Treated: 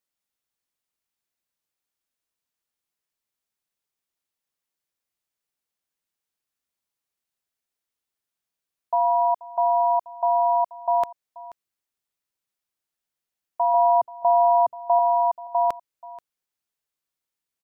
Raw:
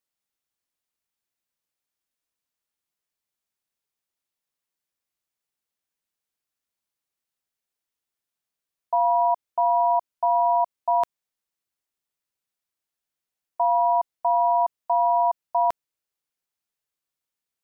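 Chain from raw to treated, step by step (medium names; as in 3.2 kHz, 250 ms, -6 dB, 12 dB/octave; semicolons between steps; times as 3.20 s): 13.74–14.99 s: ten-band graphic EQ 125 Hz +10 dB, 250 Hz +8 dB, 500 Hz +5 dB; on a send: delay 482 ms -19 dB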